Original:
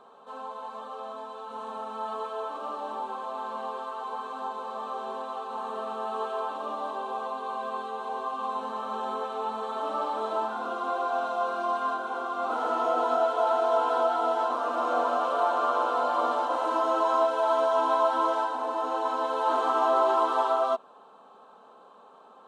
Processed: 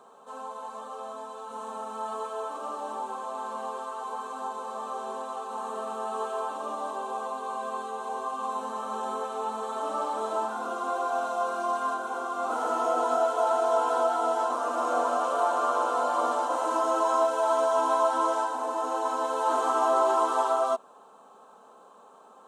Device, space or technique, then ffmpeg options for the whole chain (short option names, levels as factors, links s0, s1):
budget condenser microphone: -af "highpass=78,highshelf=f=5300:t=q:w=1.5:g=9.5"